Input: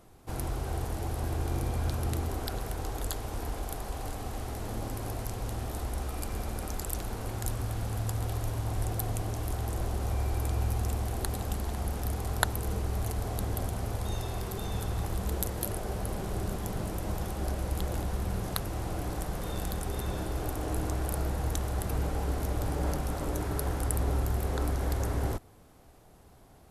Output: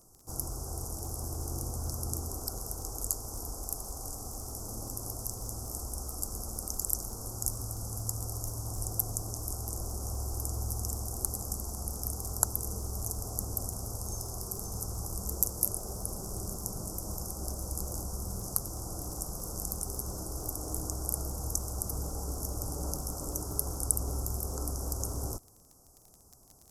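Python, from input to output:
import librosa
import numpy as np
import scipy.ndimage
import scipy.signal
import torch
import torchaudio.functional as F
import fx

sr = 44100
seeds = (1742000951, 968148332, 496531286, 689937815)

y = scipy.signal.sosfilt(scipy.signal.ellip(3, 1.0, 50, [1300.0, 5200.0], 'bandstop', fs=sr, output='sos'), x)
y = fx.dmg_crackle(y, sr, seeds[0], per_s=33.0, level_db=-42.0)
y = fx.high_shelf_res(y, sr, hz=4200.0, db=12.5, q=1.5)
y = F.gain(torch.from_numpy(y), -6.0).numpy()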